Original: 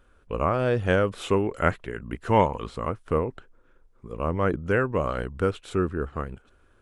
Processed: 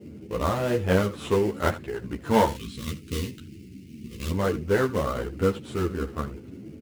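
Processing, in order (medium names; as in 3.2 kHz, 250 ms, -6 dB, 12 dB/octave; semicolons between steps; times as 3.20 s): high-pass 59 Hz; expander -58 dBFS; band noise 76–370 Hz -42 dBFS; in parallel at -7 dB: sample-rate reducer 2.5 kHz, jitter 20%; 2.47–4.31 s: on the sum: FFT filter 260 Hz 0 dB, 770 Hz -24 dB, 2.6 kHz +6 dB; on a send: delay 77 ms -16 dB; on the sum: three-phase chorus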